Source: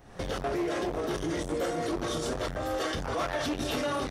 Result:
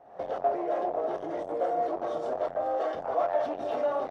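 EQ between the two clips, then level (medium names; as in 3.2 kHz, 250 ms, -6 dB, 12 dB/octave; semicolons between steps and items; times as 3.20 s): band-pass filter 680 Hz, Q 3.7; +9.0 dB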